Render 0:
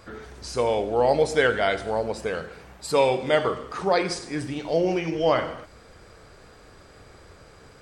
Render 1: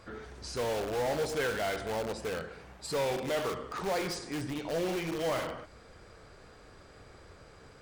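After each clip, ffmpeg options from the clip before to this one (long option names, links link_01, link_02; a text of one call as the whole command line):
ffmpeg -i in.wav -filter_complex "[0:a]asplit=2[link_01][link_02];[link_02]aeval=exprs='(mod(15.8*val(0)+1,2)-1)/15.8':channel_layout=same,volume=-4dB[link_03];[link_01][link_03]amix=inputs=2:normalize=0,highshelf=frequency=9100:gain=-5.5,asoftclip=type=hard:threshold=-18dB,volume=-8.5dB" out.wav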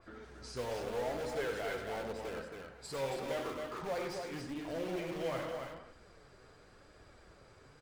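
ffmpeg -i in.wav -af "flanger=delay=2.9:depth=5.1:regen=47:speed=0.86:shape=sinusoidal,aecho=1:1:96.21|274.1:0.355|0.562,adynamicequalizer=threshold=0.00178:dfrequency=3500:dqfactor=0.7:tfrequency=3500:tqfactor=0.7:attack=5:release=100:ratio=0.375:range=2.5:mode=cutabove:tftype=highshelf,volume=-3dB" out.wav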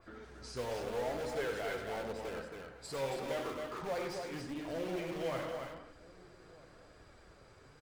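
ffmpeg -i in.wav -filter_complex "[0:a]asplit=2[link_01][link_02];[link_02]adelay=1283,volume=-22dB,highshelf=frequency=4000:gain=-28.9[link_03];[link_01][link_03]amix=inputs=2:normalize=0" out.wav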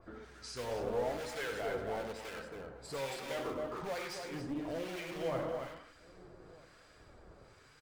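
ffmpeg -i in.wav -filter_complex "[0:a]acrossover=split=1200[link_01][link_02];[link_01]aeval=exprs='val(0)*(1-0.7/2+0.7/2*cos(2*PI*1.1*n/s))':channel_layout=same[link_03];[link_02]aeval=exprs='val(0)*(1-0.7/2-0.7/2*cos(2*PI*1.1*n/s))':channel_layout=same[link_04];[link_03][link_04]amix=inputs=2:normalize=0,volume=3.5dB" out.wav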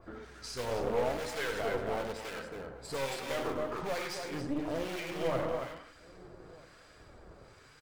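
ffmpeg -i in.wav -af "aeval=exprs='0.0631*(cos(1*acos(clip(val(0)/0.0631,-1,1)))-cos(1*PI/2))+0.00631*(cos(6*acos(clip(val(0)/0.0631,-1,1)))-cos(6*PI/2))':channel_layout=same,volume=3.5dB" out.wav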